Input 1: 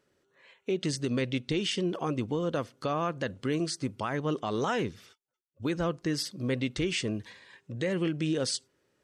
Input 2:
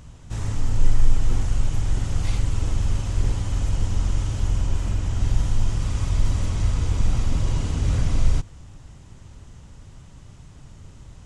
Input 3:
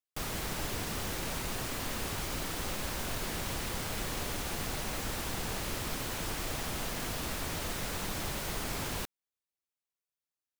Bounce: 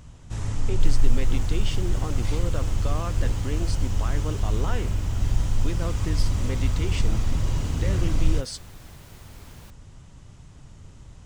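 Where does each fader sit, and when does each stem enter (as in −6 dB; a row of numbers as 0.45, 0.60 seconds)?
−4.0, −2.0, −14.0 decibels; 0.00, 0.00, 0.65 seconds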